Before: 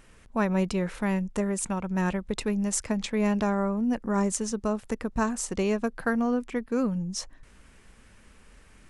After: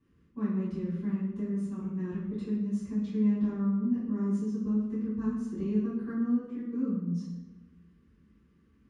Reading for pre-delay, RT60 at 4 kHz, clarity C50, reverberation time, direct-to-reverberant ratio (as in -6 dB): 3 ms, 0.80 s, 2.0 dB, 1.1 s, -13.5 dB